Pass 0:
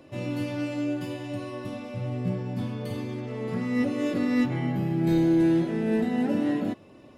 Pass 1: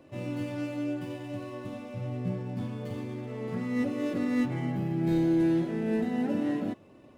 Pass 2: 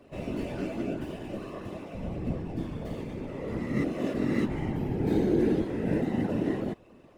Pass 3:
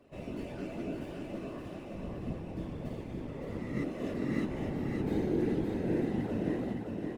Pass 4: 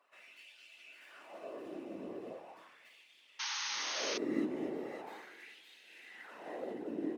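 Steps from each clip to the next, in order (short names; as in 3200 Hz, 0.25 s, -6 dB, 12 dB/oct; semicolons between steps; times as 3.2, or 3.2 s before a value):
median filter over 9 samples; gain -3.5 dB
whisperiser
feedback echo 0.566 s, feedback 44%, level -4 dB; gain -6.5 dB
LFO high-pass sine 0.39 Hz 300–3100 Hz; painted sound noise, 3.39–4.18, 790–6600 Hz -33 dBFS; gain -5.5 dB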